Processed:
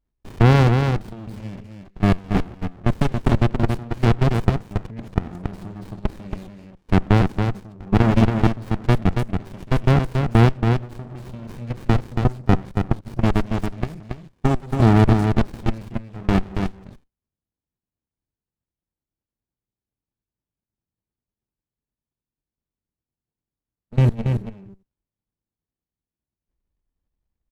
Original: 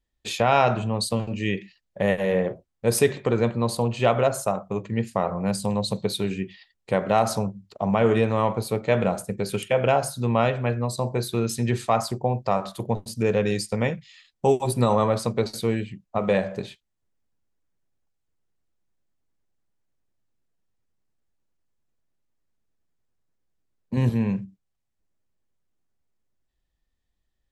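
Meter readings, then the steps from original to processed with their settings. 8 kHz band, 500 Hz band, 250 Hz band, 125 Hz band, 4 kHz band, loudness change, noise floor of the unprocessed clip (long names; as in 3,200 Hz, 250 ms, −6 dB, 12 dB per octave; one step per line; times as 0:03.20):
below −10 dB, −4.0 dB, +5.0 dB, +8.5 dB, −2.5 dB, +3.5 dB, −78 dBFS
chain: output level in coarse steps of 21 dB
single-tap delay 278 ms −5.5 dB
windowed peak hold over 65 samples
level +7.5 dB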